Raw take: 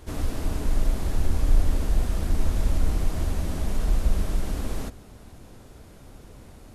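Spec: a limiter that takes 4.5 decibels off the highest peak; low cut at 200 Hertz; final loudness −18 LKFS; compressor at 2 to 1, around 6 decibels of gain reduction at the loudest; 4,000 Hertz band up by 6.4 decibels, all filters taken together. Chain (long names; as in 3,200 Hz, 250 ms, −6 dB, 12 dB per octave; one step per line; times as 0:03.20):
high-pass filter 200 Hz
parametric band 4,000 Hz +8 dB
downward compressor 2 to 1, threshold −43 dBFS
level +26 dB
brickwall limiter −7.5 dBFS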